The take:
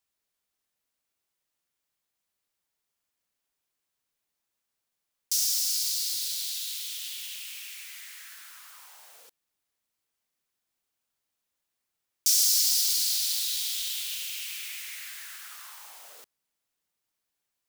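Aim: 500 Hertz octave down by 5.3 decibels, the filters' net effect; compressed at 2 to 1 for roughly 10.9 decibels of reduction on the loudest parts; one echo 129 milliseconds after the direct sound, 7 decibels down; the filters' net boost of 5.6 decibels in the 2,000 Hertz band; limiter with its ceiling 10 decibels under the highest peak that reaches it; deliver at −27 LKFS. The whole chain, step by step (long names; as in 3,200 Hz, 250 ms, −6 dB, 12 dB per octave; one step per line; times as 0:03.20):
parametric band 500 Hz −7.5 dB
parametric band 2,000 Hz +7.5 dB
downward compressor 2 to 1, threshold −39 dBFS
brickwall limiter −26.5 dBFS
single-tap delay 129 ms −7 dB
level +8.5 dB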